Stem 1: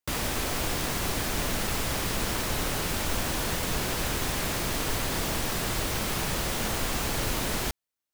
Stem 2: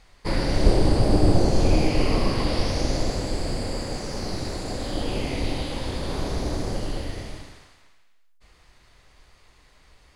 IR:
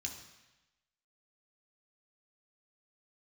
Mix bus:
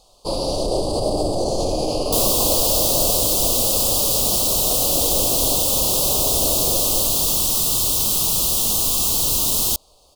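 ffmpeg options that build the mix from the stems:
-filter_complex "[0:a]adelay=2050,volume=1dB[a];[1:a]alimiter=limit=-12.5dB:level=0:latency=1:release=39,equalizer=f=610:w=0.98:g=14.5,volume=-5.5dB[b];[a][b]amix=inputs=2:normalize=0,aexciter=amount=2.3:drive=9.2:freq=3.4k,asuperstop=centerf=1800:order=8:qfactor=1.3"

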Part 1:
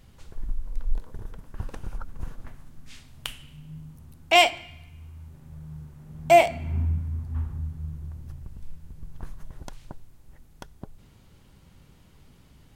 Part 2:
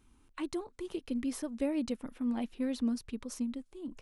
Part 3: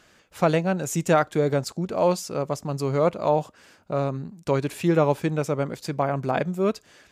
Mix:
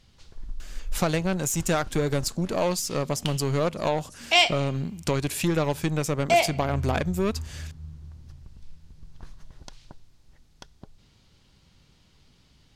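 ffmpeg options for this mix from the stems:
-filter_complex "[0:a]equalizer=f=4.8k:w=0.75:g=13,volume=-6dB[a];[1:a]adelay=800,volume=-15.5dB[b];[2:a]lowshelf=f=330:g=7,aeval=exprs='0.562*(cos(1*acos(clip(val(0)/0.562,-1,1)))-cos(1*PI/2))+0.0282*(cos(8*acos(clip(val(0)/0.562,-1,1)))-cos(8*PI/2))':c=same,adelay=600,volume=1dB[c];[b][c]amix=inputs=2:normalize=0,crystalizer=i=6:c=0,acompressor=threshold=-24dB:ratio=3,volume=0dB[d];[a][d]amix=inputs=2:normalize=0,highshelf=f=7.9k:g=-9"

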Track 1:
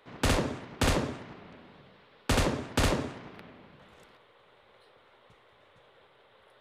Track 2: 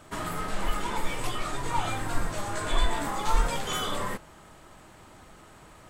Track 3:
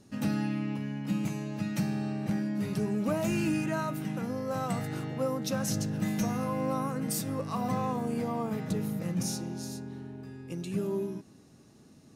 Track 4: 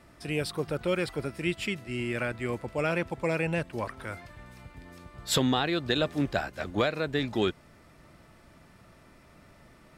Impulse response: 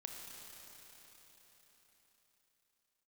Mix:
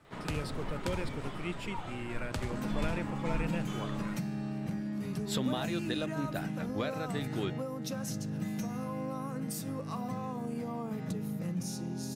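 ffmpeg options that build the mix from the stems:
-filter_complex "[0:a]acrossover=split=140[a][b];[b]acompressor=threshold=-41dB:ratio=2[c];[a][c]amix=inputs=2:normalize=0,adelay=50,volume=1.5dB[d];[1:a]lowpass=f=2.9k:p=1,volume=-12.5dB[e];[2:a]bandreject=f=50:t=h:w=6,bandreject=f=100:t=h:w=6,bandreject=f=150:t=h:w=6,bandreject=f=200:t=h:w=6,adelay=2400,volume=2dB[f];[3:a]volume=-10dB[g];[d][f]amix=inputs=2:normalize=0,acompressor=threshold=-36dB:ratio=6,volume=0dB[h];[e][g][h]amix=inputs=3:normalize=0,equalizer=f=170:w=1.4:g=4"

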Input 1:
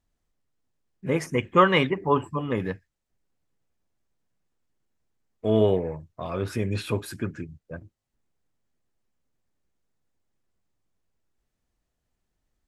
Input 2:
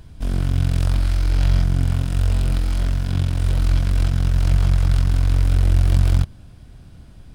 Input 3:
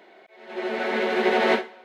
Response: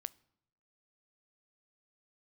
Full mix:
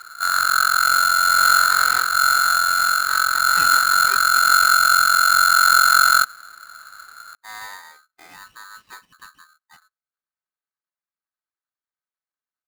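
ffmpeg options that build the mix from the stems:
-filter_complex "[0:a]highpass=84,equalizer=f=280:w=1.1:g=-3,asoftclip=type=tanh:threshold=-18dB,adelay=2000,volume=-12dB,asplit=2[a][b];[b]volume=-20dB[c];[1:a]volume=-0.5dB,asplit=2[d][e];[e]volume=-17.5dB[f];[2:a]adelay=450,volume=-14dB[g];[3:a]atrim=start_sample=2205[h];[c][f]amix=inputs=2:normalize=0[i];[i][h]afir=irnorm=-1:irlink=0[j];[a][d][g][j]amix=inputs=4:normalize=0,lowpass=1.4k,aeval=exprs='val(0)*sgn(sin(2*PI*1400*n/s))':c=same"

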